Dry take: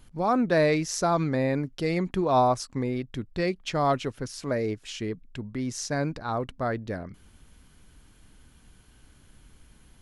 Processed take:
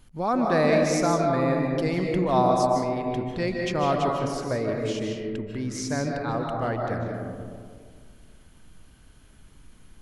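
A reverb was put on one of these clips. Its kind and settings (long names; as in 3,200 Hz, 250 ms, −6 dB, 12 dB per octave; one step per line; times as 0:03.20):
comb and all-pass reverb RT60 2 s, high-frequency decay 0.3×, pre-delay 110 ms, DRR 0.5 dB
level −1 dB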